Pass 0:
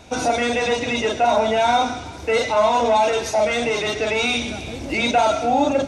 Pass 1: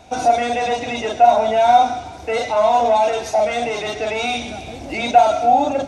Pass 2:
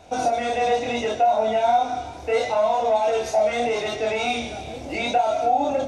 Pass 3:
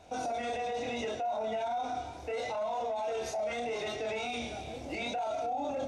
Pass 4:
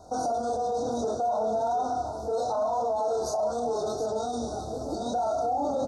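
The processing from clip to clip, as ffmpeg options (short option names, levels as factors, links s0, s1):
-af "equalizer=f=730:t=o:w=0.32:g=11,volume=0.708"
-af "acompressor=threshold=0.158:ratio=3,flanger=delay=22.5:depth=5:speed=0.75,equalizer=f=500:w=2:g=3.5"
-af "alimiter=limit=0.1:level=0:latency=1:release=18,volume=0.422"
-filter_complex "[0:a]asuperstop=centerf=2400:order=12:qfactor=0.87,asplit=2[s0][s1];[s1]aecho=0:1:722:0.316[s2];[s0][s2]amix=inputs=2:normalize=0,volume=2.11"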